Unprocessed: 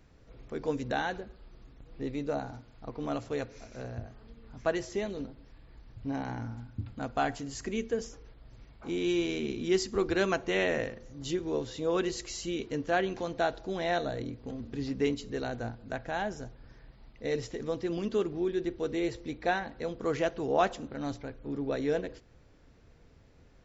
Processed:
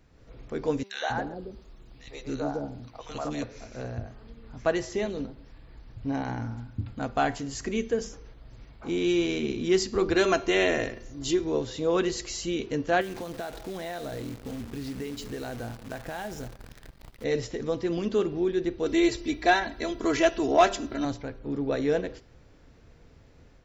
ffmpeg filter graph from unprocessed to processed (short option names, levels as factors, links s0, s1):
-filter_complex "[0:a]asettb=1/sr,asplit=3[s0][s1][s2];[s0]atrim=end=0.834[s3];[s1]atrim=start=0.83:end=3.43,asetpts=PTS-STARTPTS,afade=t=in:d=0.004:c=qsin,afade=t=out:st=2.596:d=0.004:c=qsin,bass=f=250:g=-2,treble=f=4000:g=4,acrossover=split=510|1700[s4][s5][s6];[s5]adelay=110[s7];[s4]adelay=270[s8];[s8][s7][s6]amix=inputs=3:normalize=0,atrim=end_sample=114660[s9];[s2]atrim=start=3.426[s10];[s3][s9]acrossfade=d=0.004:c1=hsin:c2=qsin[s11];[s11][s10]acrossfade=d=0.004:c1=qsin:c2=hsin,asettb=1/sr,asplit=3[s12][s13][s14];[s12]atrim=end=10.164[s15];[s13]atrim=start=10.16:end=11.44,asetpts=PTS-STARTPTS,afade=t=in:d=0.004:c=qsin,afade=t=out:st=1.276:d=0.004:c=qsin,highshelf=f=5600:g=6.5,aecho=1:1:2.9:0.43,atrim=end_sample=56448[s16];[s14]atrim=start=11.436[s17];[s15][s16]acrossfade=d=0.004:c1=hsin:c2=qsin[s18];[s18][s17]acrossfade=d=0.004:c1=qsin:c2=hsin,asettb=1/sr,asplit=3[s19][s20][s21];[s19]atrim=end=13.014[s22];[s20]atrim=start=13.01:end=17.24,asetpts=PTS-STARTPTS,afade=t=in:d=0.004:c=qsin,afade=t=out:st=4.226:d=0.004:c=qsin,acompressor=threshold=0.0178:ratio=12:attack=3.2:release=140:knee=1:detection=peak,acrusher=bits=9:dc=4:mix=0:aa=0.000001[s23];[s21]atrim=start=17.236[s24];[s22][s23]acrossfade=d=0.004:c1=hsin:c2=qsin[s25];[s25][s24]acrossfade=d=0.004:c1=qsin:c2=hsin,asettb=1/sr,asplit=3[s26][s27][s28];[s26]atrim=end=18.864[s29];[s27]atrim=start=18.86:end=21.05,asetpts=PTS-STARTPTS,afade=t=in:d=0.004:c=qsin,afade=t=out:st=2.186:d=0.004:c=qsin,highshelf=f=2500:g=7.5,aecho=1:1:3:0.79,atrim=end_sample=96579[s30];[s28]atrim=start=21.046[s31];[s29][s30]acrossfade=d=0.004:c1=hsin:c2=qsin[s32];[s32][s31]acrossfade=d=0.004:c1=qsin:c2=hsin,dynaudnorm=f=110:g=3:m=1.78,bandreject=f=197.6:t=h:w=4,bandreject=f=395.2:t=h:w=4,bandreject=f=592.8:t=h:w=4,bandreject=f=790.4:t=h:w=4,bandreject=f=988:t=h:w=4,bandreject=f=1185.6:t=h:w=4,bandreject=f=1383.2:t=h:w=4,bandreject=f=1580.8:t=h:w=4,bandreject=f=1778.4:t=h:w=4,bandreject=f=1976:t=h:w=4,bandreject=f=2173.6:t=h:w=4,bandreject=f=2371.2:t=h:w=4,bandreject=f=2568.8:t=h:w=4,bandreject=f=2766.4:t=h:w=4,bandreject=f=2964:t=h:w=4,bandreject=f=3161.6:t=h:w=4,bandreject=f=3359.2:t=h:w=4,bandreject=f=3556.8:t=h:w=4,bandreject=f=3754.4:t=h:w=4,bandreject=f=3952:t=h:w=4,bandreject=f=4149.6:t=h:w=4,bandreject=f=4347.2:t=h:w=4,bandreject=f=4544.8:t=h:w=4,bandreject=f=4742.4:t=h:w=4,bandreject=f=4940:t=h:w=4,bandreject=f=5137.6:t=h:w=4,bandreject=f=5335.2:t=h:w=4,bandreject=f=5532.8:t=h:w=4,bandreject=f=5730.4:t=h:w=4,bandreject=f=5928:t=h:w=4,bandreject=f=6125.6:t=h:w=4,acontrast=49,volume=0.473"